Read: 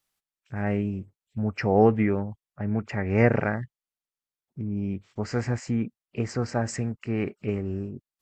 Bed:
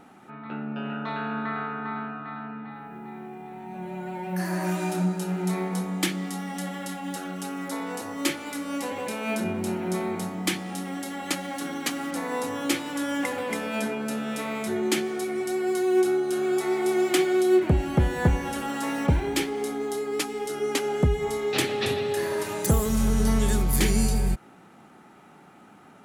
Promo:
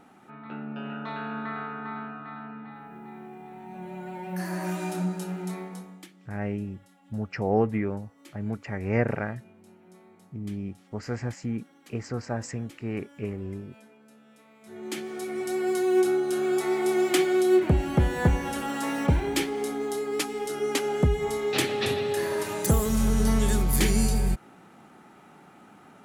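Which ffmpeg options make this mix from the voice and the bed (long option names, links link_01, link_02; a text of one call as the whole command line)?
ffmpeg -i stem1.wav -i stem2.wav -filter_complex "[0:a]adelay=5750,volume=-4.5dB[link_01];[1:a]volume=21.5dB,afade=type=out:start_time=5.18:duration=0.9:silence=0.0794328,afade=type=in:start_time=14.61:duration=1.01:silence=0.0562341[link_02];[link_01][link_02]amix=inputs=2:normalize=0" out.wav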